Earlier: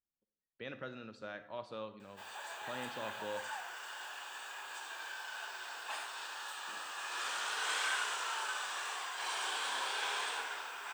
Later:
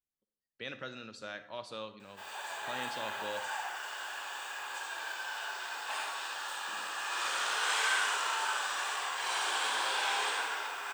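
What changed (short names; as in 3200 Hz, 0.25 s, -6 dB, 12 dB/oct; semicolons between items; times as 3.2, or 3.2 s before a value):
speech: remove LPF 1400 Hz 6 dB/oct; background: send on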